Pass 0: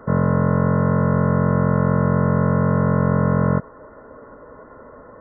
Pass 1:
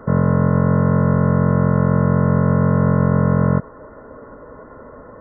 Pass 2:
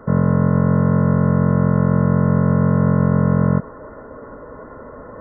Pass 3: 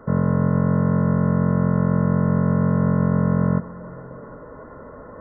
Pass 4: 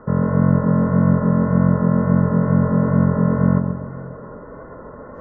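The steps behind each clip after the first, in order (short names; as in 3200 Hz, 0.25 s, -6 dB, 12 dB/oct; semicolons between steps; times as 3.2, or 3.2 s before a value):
low shelf 330 Hz +4 dB; in parallel at -0.5 dB: limiter -12 dBFS, peak gain reduction 8.5 dB; on the sum: gain -4 dB
dynamic EQ 200 Hz, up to +3 dB, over -24 dBFS, Q 1.1; reverse; upward compressor, threshold -27 dBFS; reverse; gain -2 dB
reverb RT60 3.6 s, pre-delay 3 ms, DRR 19 dB; gain -3.5 dB
wow and flutter 32 cents; dark delay 0.134 s, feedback 47%, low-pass 1100 Hz, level -5 dB; gain +2 dB; MP3 32 kbps 16000 Hz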